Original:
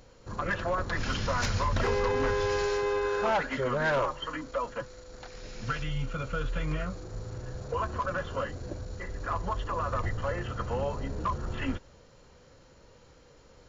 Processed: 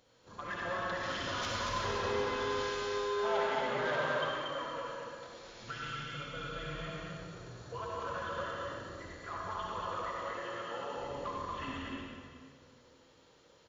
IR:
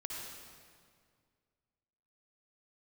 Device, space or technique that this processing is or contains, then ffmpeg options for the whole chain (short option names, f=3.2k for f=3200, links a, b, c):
stadium PA: -filter_complex "[0:a]asettb=1/sr,asplit=3[a][b][c];[a]atrim=end=9.814[d];[b]atrim=start=9.81:end=10.95,asetpts=PTS-STARTPTS,afade=t=in:d=0.004:c=qsin,afade=t=out:st=1.136:d=0.004:c=qsin,highpass=260[e];[c]atrim=start=10.946[f];[d][e]acrossfade=d=0.004:c1=hsin:c2=qsin[g];[g][f]acrossfade=d=0.004:c1=qsin:c2=hsin,highpass=f=140:p=1,lowshelf=f=180:g=-5.5,equalizer=f=3.4k:t=o:w=0.33:g=8,aecho=1:1:183.7|233.2:0.316|0.631[h];[1:a]atrim=start_sample=2205[i];[h][i]afir=irnorm=-1:irlink=0,volume=-6dB"